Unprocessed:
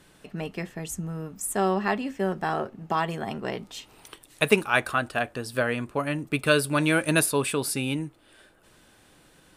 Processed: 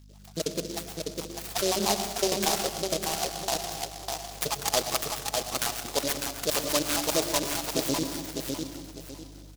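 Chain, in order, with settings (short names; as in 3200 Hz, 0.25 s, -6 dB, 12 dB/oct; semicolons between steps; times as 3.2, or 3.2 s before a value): random spectral dropouts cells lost 74%; gate -58 dBFS, range -7 dB; Chebyshev band-pass 640–8000 Hz, order 2; tilt -4.5 dB/oct; in parallel at +3 dB: negative-ratio compressor -39 dBFS, ratio -1; on the sum: hum 50 Hz, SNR 19 dB; feedback echo 0.602 s, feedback 30%, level -4 dB; on a send at -9.5 dB: reverb RT60 1.1 s, pre-delay 94 ms; on the sum: noise-modulated delay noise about 4800 Hz, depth 0.18 ms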